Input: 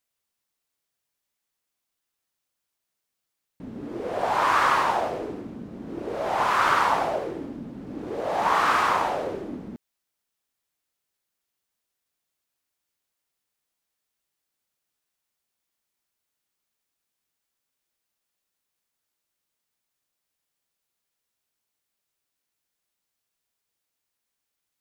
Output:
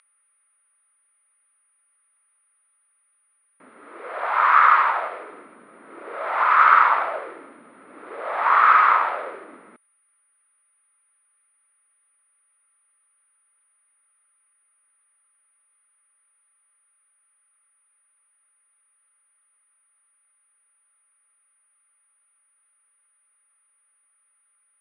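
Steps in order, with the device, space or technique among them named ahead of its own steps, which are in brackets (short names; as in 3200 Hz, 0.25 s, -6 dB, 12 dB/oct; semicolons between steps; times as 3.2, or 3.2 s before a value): 3.69–5.32 low shelf 330 Hz -6 dB; toy sound module (decimation joined by straight lines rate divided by 6×; pulse-width modulation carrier 9600 Hz; speaker cabinet 790–3800 Hz, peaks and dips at 790 Hz -6 dB, 1300 Hz +9 dB, 2100 Hz +5 dB, 3000 Hz -4 dB); gain +4 dB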